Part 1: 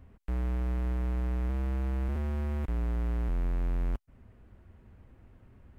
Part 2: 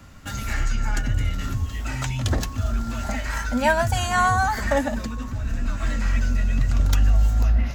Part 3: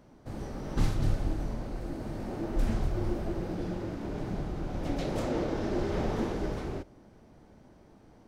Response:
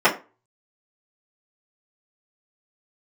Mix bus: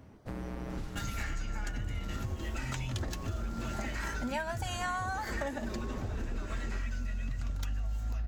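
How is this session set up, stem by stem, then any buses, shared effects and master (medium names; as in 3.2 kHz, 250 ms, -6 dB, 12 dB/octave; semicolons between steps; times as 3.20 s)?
+2.0 dB, 0.00 s, bus A, no send, high-pass 86 Hz 24 dB/octave
-5.5 dB, 0.70 s, no bus, no send, peaking EQ 2.6 kHz +2.5 dB 2.3 oct
-1.5 dB, 0.00 s, bus A, no send, reverb removal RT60 0.5 s
bus A: 0.0 dB, compression, threshold -35 dBFS, peak gain reduction 13.5 dB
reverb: none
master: compression, threshold -32 dBFS, peak gain reduction 13 dB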